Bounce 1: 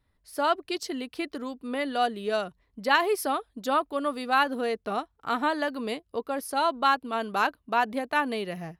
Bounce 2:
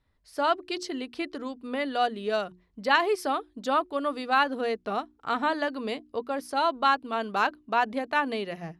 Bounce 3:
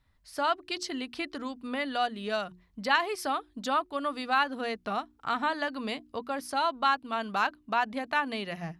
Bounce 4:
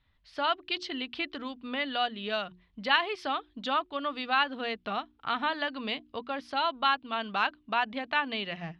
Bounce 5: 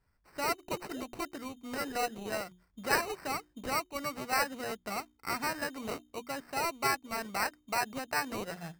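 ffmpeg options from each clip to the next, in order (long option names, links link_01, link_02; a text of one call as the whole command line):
ffmpeg -i in.wav -af "lowpass=7400,bandreject=frequency=60:width_type=h:width=6,bandreject=frequency=120:width_type=h:width=6,bandreject=frequency=180:width_type=h:width=6,bandreject=frequency=240:width_type=h:width=6,bandreject=frequency=300:width_type=h:width=6,bandreject=frequency=360:width_type=h:width=6" out.wav
ffmpeg -i in.wav -filter_complex "[0:a]equalizer=frequency=420:width=1.3:gain=-8.5,asplit=2[link_01][link_02];[link_02]acompressor=threshold=-35dB:ratio=6,volume=1.5dB[link_03];[link_01][link_03]amix=inputs=2:normalize=0,volume=-3.5dB" out.wav
ffmpeg -i in.wav -af "lowpass=frequency=3300:width_type=q:width=2.4,volume=-2dB" out.wav
ffmpeg -i in.wav -af "acrusher=samples=13:mix=1:aa=0.000001,volume=-4dB" out.wav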